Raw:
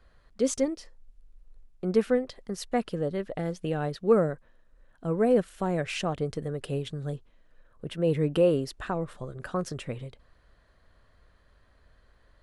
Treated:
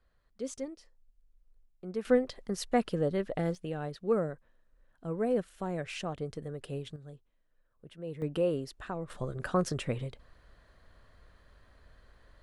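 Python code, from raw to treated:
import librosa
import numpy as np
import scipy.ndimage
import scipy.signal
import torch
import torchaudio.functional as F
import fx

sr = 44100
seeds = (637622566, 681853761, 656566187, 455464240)

y = fx.gain(x, sr, db=fx.steps((0.0, -12.0), (2.05, 0.0), (3.55, -7.0), (6.96, -15.0), (8.22, -7.0), (9.1, 2.0)))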